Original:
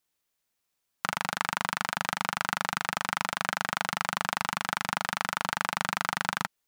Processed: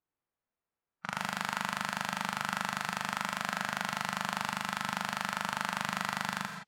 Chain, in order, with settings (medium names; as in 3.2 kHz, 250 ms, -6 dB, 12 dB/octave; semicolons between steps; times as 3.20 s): gated-style reverb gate 190 ms rising, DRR 7.5 dB; level-controlled noise filter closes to 1.4 kHz, open at -29.5 dBFS; harmonic-percussive split percussive -10 dB